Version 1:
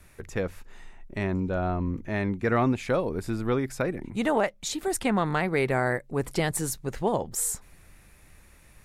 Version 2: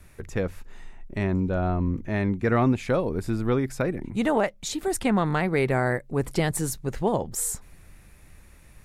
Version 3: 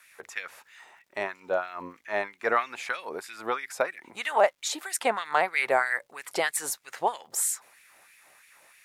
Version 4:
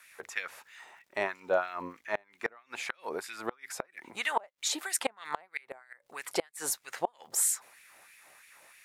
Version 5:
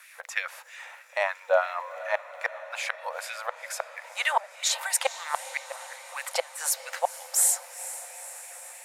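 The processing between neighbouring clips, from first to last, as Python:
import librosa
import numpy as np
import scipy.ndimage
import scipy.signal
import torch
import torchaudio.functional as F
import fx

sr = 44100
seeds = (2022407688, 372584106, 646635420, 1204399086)

y1 = fx.low_shelf(x, sr, hz=330.0, db=4.5)
y2 = fx.filter_lfo_highpass(y1, sr, shape='sine', hz=3.1, low_hz=620.0, high_hz=2300.0, q=1.8)
y2 = fx.dmg_crackle(y2, sr, seeds[0], per_s=320.0, level_db=-58.0)
y2 = F.gain(torch.from_numpy(y2), 1.0).numpy()
y3 = fx.gate_flip(y2, sr, shuts_db=-15.0, range_db=-31)
y4 = fx.brickwall_highpass(y3, sr, low_hz=490.0)
y4 = fx.echo_diffused(y4, sr, ms=459, feedback_pct=67, wet_db=-14.5)
y4 = F.gain(torch.from_numpy(y4), 5.5).numpy()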